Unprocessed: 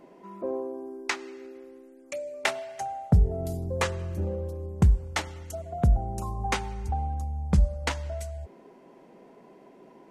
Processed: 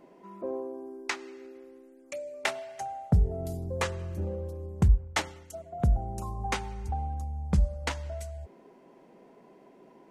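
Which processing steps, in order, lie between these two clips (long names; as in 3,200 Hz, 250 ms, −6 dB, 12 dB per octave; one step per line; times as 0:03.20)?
0:04.88–0:05.80: multiband upward and downward expander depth 70%
level −3 dB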